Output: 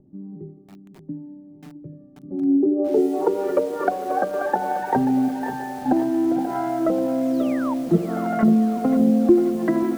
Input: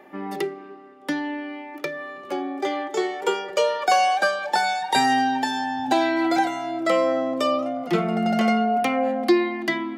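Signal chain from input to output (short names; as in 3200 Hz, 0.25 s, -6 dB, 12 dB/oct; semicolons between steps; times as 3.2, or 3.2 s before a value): 5.28–5.86 resonator 84 Hz, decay 0.54 s, harmonics odd, mix 70%; 7.97–8.43 bell 240 Hz -12.5 dB 2.3 oct; split-band echo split 350 Hz, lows 0.569 s, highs 82 ms, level -10 dB; on a send at -19.5 dB: reverb RT60 0.25 s, pre-delay 4 ms; on the sum: upward compressor, threshold -40 dBFS; tilt shelf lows +9.5 dB, about 850 Hz; notches 50/100/150 Hz; low-pass sweep 120 Hz -> 1600 Hz, 2.13–3.46; 7.22–7.74 painted sound fall 860–8200 Hz -10 dBFS; treble ducked by the level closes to 330 Hz, closed at -13 dBFS; lo-fi delay 0.534 s, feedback 55%, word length 6-bit, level -10.5 dB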